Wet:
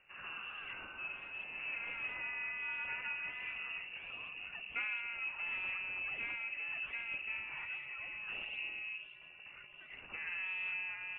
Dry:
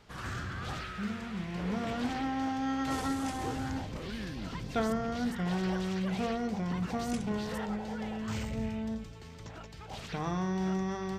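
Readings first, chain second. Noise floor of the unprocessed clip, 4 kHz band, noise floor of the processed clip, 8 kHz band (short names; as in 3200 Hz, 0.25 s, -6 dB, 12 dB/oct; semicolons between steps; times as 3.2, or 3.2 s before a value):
-47 dBFS, -4.5 dB, -55 dBFS, under -30 dB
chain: inverted band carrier 2800 Hz; flange 1.4 Hz, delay 1.3 ms, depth 4.8 ms, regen -88%; gain -4 dB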